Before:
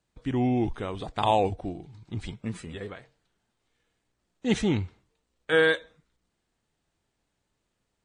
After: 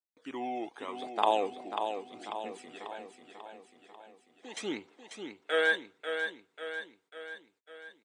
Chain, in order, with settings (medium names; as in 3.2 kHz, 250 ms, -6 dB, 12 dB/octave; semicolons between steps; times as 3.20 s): 2.22–4.57 s: compression 4:1, threshold -34 dBFS, peak gain reduction 13.5 dB; phaser 0.81 Hz, delay 1.6 ms, feedback 55%; feedback delay 542 ms, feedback 55%, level -7 dB; gate -54 dBFS, range -26 dB; high-pass 320 Hz 24 dB/octave; trim -5.5 dB